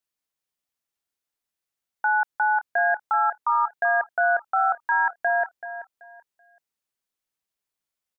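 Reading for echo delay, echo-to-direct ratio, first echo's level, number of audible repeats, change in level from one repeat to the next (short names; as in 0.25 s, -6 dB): 0.382 s, -12.0 dB, -12.5 dB, 2, -12.5 dB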